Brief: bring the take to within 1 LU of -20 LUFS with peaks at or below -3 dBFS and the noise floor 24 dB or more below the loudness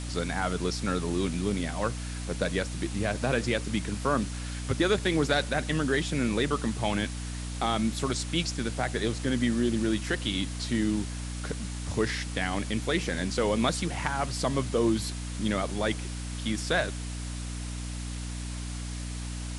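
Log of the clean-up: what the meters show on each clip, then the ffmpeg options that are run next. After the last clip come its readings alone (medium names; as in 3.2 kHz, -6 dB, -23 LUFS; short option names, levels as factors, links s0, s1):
hum 60 Hz; highest harmonic 300 Hz; hum level -33 dBFS; noise floor -36 dBFS; noise floor target -54 dBFS; loudness -29.5 LUFS; peak level -11.0 dBFS; loudness target -20.0 LUFS
-> -af "bandreject=f=60:t=h:w=4,bandreject=f=120:t=h:w=4,bandreject=f=180:t=h:w=4,bandreject=f=240:t=h:w=4,bandreject=f=300:t=h:w=4"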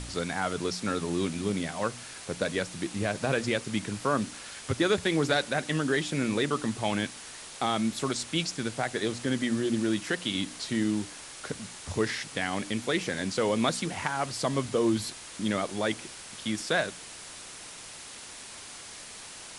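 hum not found; noise floor -45 dBFS; noise floor target -54 dBFS
-> -af "afftdn=nr=9:nf=-45"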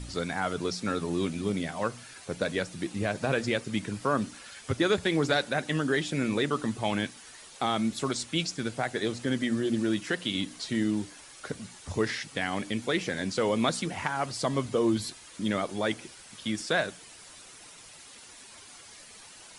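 noise floor -50 dBFS; noise floor target -54 dBFS
-> -af "afftdn=nr=6:nf=-50"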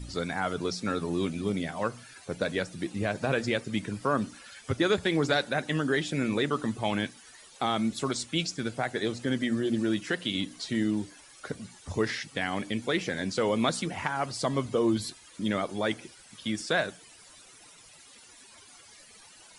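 noise floor -54 dBFS; loudness -30.0 LUFS; peak level -10.5 dBFS; loudness target -20.0 LUFS
-> -af "volume=3.16,alimiter=limit=0.708:level=0:latency=1"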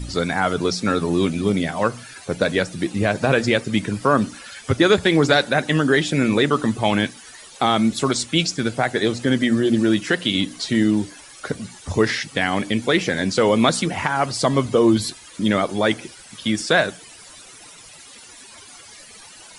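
loudness -20.0 LUFS; peak level -3.0 dBFS; noise floor -44 dBFS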